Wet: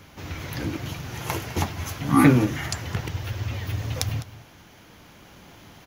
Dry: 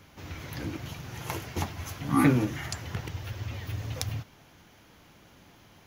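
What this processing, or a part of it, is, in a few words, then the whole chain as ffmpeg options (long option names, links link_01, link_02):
ducked delay: -filter_complex "[0:a]asplit=3[link_01][link_02][link_03];[link_02]adelay=206,volume=-2.5dB[link_04];[link_03]apad=whole_len=267739[link_05];[link_04][link_05]sidechaincompress=threshold=-45dB:ratio=8:attack=20:release=1120[link_06];[link_01][link_06]amix=inputs=2:normalize=0,volume=6dB"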